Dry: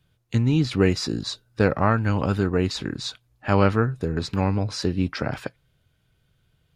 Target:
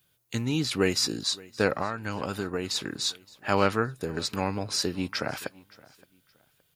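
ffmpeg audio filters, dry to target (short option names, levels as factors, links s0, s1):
-filter_complex "[0:a]aemphasis=mode=production:type=bsi,asettb=1/sr,asplit=3[s0][s1][s2];[s0]atrim=end=1.764[s3];[s1]atrim=start=1.76:end=2.76,asetpts=PTS-STARTPTS,afade=t=in:d=0.004:c=qsin,afade=t=out:st=0.996:d=0.004:c=qsin,acompressor=threshold=0.0631:ratio=6[s4];[s2]atrim=start=2.756[s5];[s3][s4]acrossfade=d=0.004:c1=hsin:c2=qsin[s6];[s6][s5]acrossfade=d=0.004:c1=qsin:c2=hsin,aecho=1:1:569|1138:0.0708|0.0191,volume=0.794"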